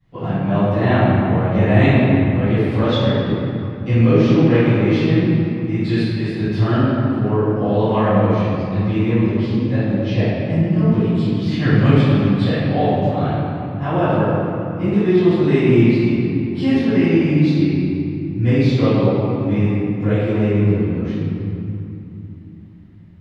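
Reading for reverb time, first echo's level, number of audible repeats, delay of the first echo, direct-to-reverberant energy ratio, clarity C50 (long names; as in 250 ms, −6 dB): 2.9 s, no echo audible, no echo audible, no echo audible, −21.0 dB, −6.0 dB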